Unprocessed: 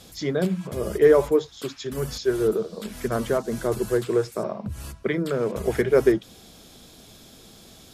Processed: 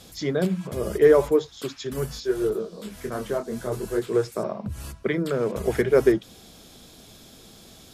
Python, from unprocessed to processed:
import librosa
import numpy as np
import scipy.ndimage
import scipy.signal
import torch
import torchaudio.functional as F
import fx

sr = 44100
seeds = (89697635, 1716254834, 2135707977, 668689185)

y = fx.detune_double(x, sr, cents=fx.line((2.05, 14.0), (4.13, 29.0)), at=(2.05, 4.13), fade=0.02)